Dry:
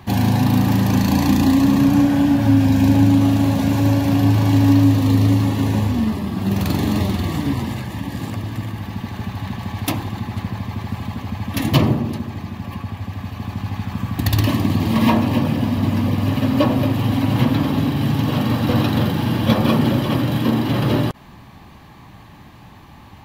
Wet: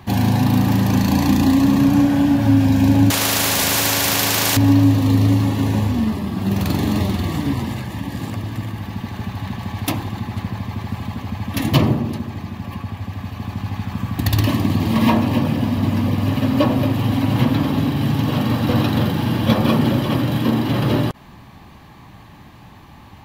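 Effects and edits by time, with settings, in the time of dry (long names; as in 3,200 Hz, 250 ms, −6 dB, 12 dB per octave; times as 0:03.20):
0:03.10–0:04.57: every bin compressed towards the loudest bin 4 to 1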